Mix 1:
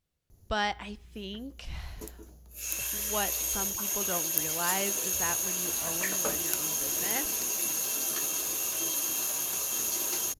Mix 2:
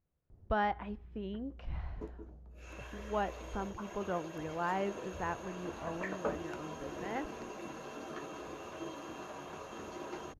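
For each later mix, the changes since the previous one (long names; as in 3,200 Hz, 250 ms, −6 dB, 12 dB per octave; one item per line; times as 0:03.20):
master: add low-pass filter 1,300 Hz 12 dB per octave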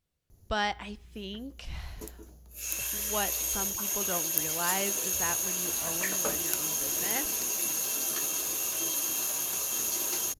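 master: remove low-pass filter 1,300 Hz 12 dB per octave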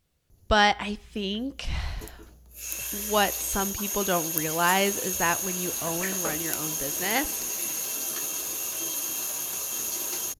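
speech +9.5 dB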